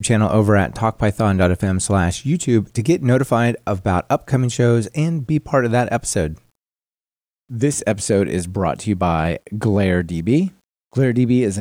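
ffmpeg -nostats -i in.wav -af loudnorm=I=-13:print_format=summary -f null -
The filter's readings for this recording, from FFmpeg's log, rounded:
Input Integrated:    -18.6 LUFS
Input True Peak:      -5.0 dBTP
Input LRA:             3.4 LU
Input Threshold:     -28.8 LUFS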